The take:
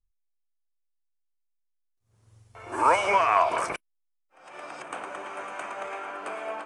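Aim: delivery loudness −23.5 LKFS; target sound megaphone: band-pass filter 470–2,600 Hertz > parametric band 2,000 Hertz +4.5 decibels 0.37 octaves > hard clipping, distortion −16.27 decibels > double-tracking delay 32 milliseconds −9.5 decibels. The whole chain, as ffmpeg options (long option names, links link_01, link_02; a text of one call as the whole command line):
ffmpeg -i in.wav -filter_complex "[0:a]highpass=470,lowpass=2600,equalizer=frequency=2000:width_type=o:width=0.37:gain=4.5,asoftclip=type=hard:threshold=-15.5dB,asplit=2[link_01][link_02];[link_02]adelay=32,volume=-9.5dB[link_03];[link_01][link_03]amix=inputs=2:normalize=0,volume=4dB" out.wav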